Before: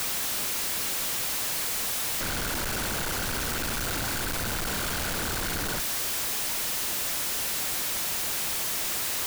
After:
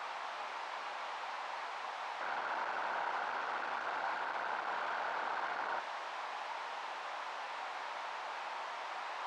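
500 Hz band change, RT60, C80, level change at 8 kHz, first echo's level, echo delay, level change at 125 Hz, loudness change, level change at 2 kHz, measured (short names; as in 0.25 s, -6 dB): -7.0 dB, 0.60 s, 13.5 dB, under -30 dB, none, none, under -30 dB, -12.5 dB, -7.0 dB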